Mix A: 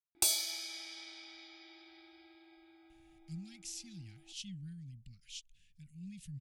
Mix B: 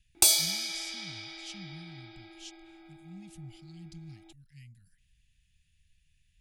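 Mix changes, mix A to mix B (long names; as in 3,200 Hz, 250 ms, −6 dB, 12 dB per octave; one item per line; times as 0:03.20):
speech: entry −2.90 s
background +8.5 dB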